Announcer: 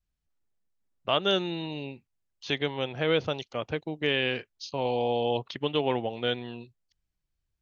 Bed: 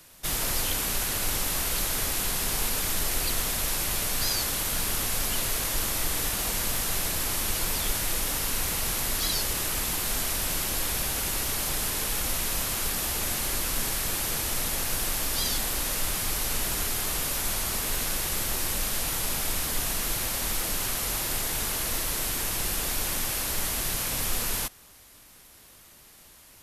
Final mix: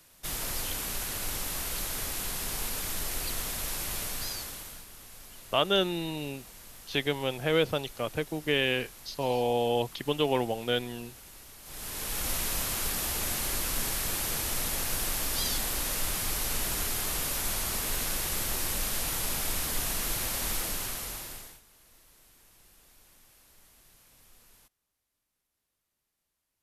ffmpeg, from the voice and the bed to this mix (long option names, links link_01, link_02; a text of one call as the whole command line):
ffmpeg -i stem1.wav -i stem2.wav -filter_complex "[0:a]adelay=4450,volume=0dB[link_01];[1:a]volume=12.5dB,afade=type=out:start_time=4.01:duration=0.85:silence=0.177828,afade=type=in:start_time=11.63:duration=0.68:silence=0.11885,afade=type=out:start_time=20.54:duration=1.07:silence=0.0398107[link_02];[link_01][link_02]amix=inputs=2:normalize=0" out.wav